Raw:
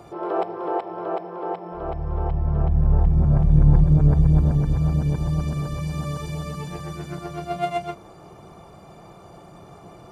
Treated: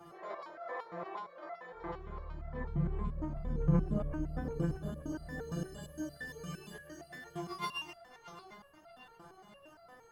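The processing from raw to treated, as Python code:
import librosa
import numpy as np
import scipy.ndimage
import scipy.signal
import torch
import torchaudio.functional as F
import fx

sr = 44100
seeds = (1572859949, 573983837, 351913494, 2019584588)

y = fx.formant_shift(x, sr, semitones=5)
y = fx.echo_banded(y, sr, ms=628, feedback_pct=45, hz=2600.0, wet_db=-9.5)
y = fx.resonator_held(y, sr, hz=8.7, low_hz=170.0, high_hz=680.0)
y = y * librosa.db_to_amplitude(2.5)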